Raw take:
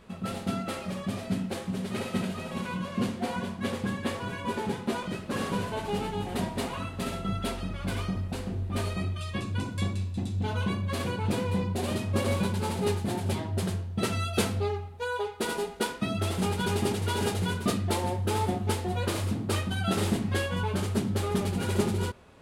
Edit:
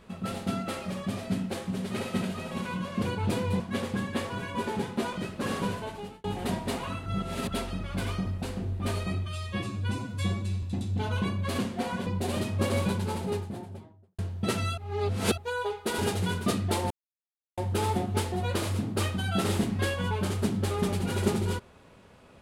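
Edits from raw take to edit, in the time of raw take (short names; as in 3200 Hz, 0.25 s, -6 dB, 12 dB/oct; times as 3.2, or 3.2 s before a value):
3.02–3.5 swap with 11.03–11.61
5.55–6.14 fade out
6.96–7.41 reverse
9.16–10.07 stretch 1.5×
12.34–13.73 studio fade out
14.32–14.92 reverse
15.53–17.18 cut
18.1 insert silence 0.67 s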